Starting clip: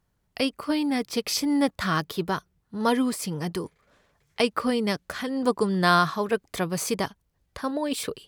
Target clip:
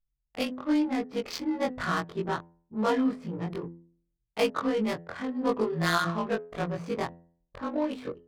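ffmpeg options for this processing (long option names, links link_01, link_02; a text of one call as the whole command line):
ffmpeg -i in.wav -af "afftfilt=real='re':imag='-im':win_size=2048:overlap=0.75,anlmdn=0.0398,highshelf=frequency=4100:gain=-2,bandreject=frequency=84.72:width_type=h:width=4,bandreject=frequency=169.44:width_type=h:width=4,bandreject=frequency=254.16:width_type=h:width=4,bandreject=frequency=338.88:width_type=h:width=4,bandreject=frequency=423.6:width_type=h:width=4,bandreject=frequency=508.32:width_type=h:width=4,bandreject=frequency=593.04:width_type=h:width=4,bandreject=frequency=677.76:width_type=h:width=4,bandreject=frequency=762.48:width_type=h:width=4,bandreject=frequency=847.2:width_type=h:width=4,bandreject=frequency=931.92:width_type=h:width=4,bandreject=frequency=1016.64:width_type=h:width=4,bandreject=frequency=1101.36:width_type=h:width=4,bandreject=frequency=1186.08:width_type=h:width=4,bandreject=frequency=1270.8:width_type=h:width=4,bandreject=frequency=1355.52:width_type=h:width=4,bandreject=frequency=1440.24:width_type=h:width=4,bandreject=frequency=1524.96:width_type=h:width=4,bandreject=frequency=1609.68:width_type=h:width=4,bandreject=frequency=1694.4:width_type=h:width=4,bandreject=frequency=1779.12:width_type=h:width=4,bandreject=frequency=1863.84:width_type=h:width=4,bandreject=frequency=1948.56:width_type=h:width=4,adynamicsmooth=sensitivity=5.5:basefreq=840,volume=2dB" out.wav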